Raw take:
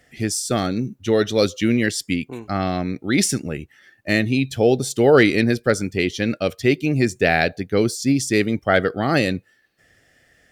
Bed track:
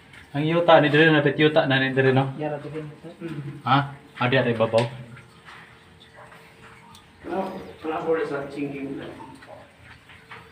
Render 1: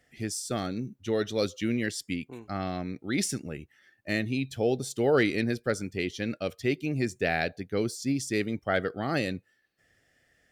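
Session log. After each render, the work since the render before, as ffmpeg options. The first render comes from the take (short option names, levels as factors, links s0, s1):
-af "volume=0.316"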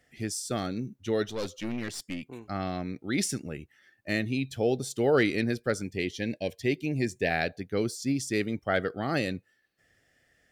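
-filter_complex "[0:a]asettb=1/sr,asplit=3[s0][s1][s2];[s0]atrim=end=1.254[s3];[s1]atrim=start=1.25:end=2.25,asetpts=PTS-STARTPTS,afade=t=in:d=0.004:c=qsin,afade=t=out:st=0.996:d=0.004:c=qsin,aeval=exprs='(tanh(25.1*val(0)+0.5)-tanh(0.5))/25.1':c=same[s4];[s2]atrim=start=2.246[s5];[s3][s4]acrossfade=d=0.004:c1=hsin:c2=qsin[s6];[s6][s5]acrossfade=d=0.004:c1=qsin:c2=hsin,asplit=3[s7][s8][s9];[s7]afade=t=out:st=5.83:d=0.02[s10];[s8]asuperstop=centerf=1300:order=20:qfactor=2.7,afade=t=in:st=5.83:d=0.02,afade=t=out:st=7.29:d=0.02[s11];[s9]afade=t=in:st=7.29:d=0.02[s12];[s10][s11][s12]amix=inputs=3:normalize=0"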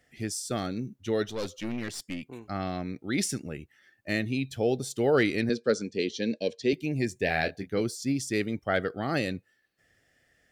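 -filter_complex "[0:a]asettb=1/sr,asplit=3[s0][s1][s2];[s0]atrim=end=5.494[s3];[s1]atrim=start=5.49:end=6.73,asetpts=PTS-STARTPTS,afade=t=in:d=0.004:c=qsin,afade=t=out:st=1.236:d=0.004:c=qsin,highpass=190,equalizer=f=220:t=q:w=4:g=6,equalizer=f=460:t=q:w=4:g=8,equalizer=f=750:t=q:w=4:g=-7,equalizer=f=2000:t=q:w=4:g=-6,equalizer=f=4100:t=q:w=4:g=7,equalizer=f=6100:t=q:w=4:g=3,lowpass=f=7400:w=0.5412,lowpass=f=7400:w=1.3066[s4];[s2]atrim=start=6.726[s5];[s3][s4]acrossfade=d=0.004:c1=hsin:c2=qsin[s6];[s6][s5]acrossfade=d=0.004:c1=qsin:c2=hsin,asettb=1/sr,asplit=3[s7][s8][s9];[s7]atrim=end=7.254[s10];[s8]atrim=start=7.25:end=7.81,asetpts=PTS-STARTPTS,afade=t=in:d=0.004:c=qsin,afade=t=out:st=0.556:d=0.004:c=qsin,asplit=2[s11][s12];[s12]adelay=26,volume=0.398[s13];[s11][s13]amix=inputs=2:normalize=0,atrim=end_sample=24696[s14];[s9]atrim=start=7.806[s15];[s10][s14]acrossfade=d=0.004:c1=hsin:c2=qsin[s16];[s16][s15]acrossfade=d=0.004:c1=qsin:c2=hsin"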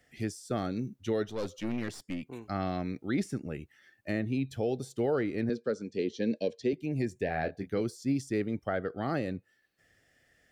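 -filter_complex "[0:a]acrossover=split=600|1600[s0][s1][s2];[s2]acompressor=threshold=0.00501:ratio=6[s3];[s0][s1][s3]amix=inputs=3:normalize=0,alimiter=limit=0.1:level=0:latency=1:release=473"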